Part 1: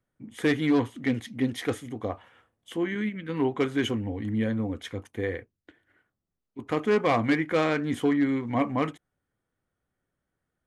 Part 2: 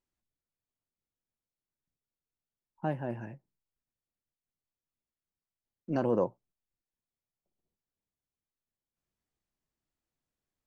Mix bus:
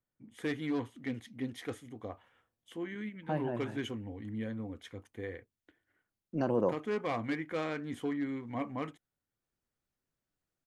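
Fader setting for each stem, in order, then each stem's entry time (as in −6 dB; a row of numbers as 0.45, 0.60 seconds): −11.0, −1.5 decibels; 0.00, 0.45 seconds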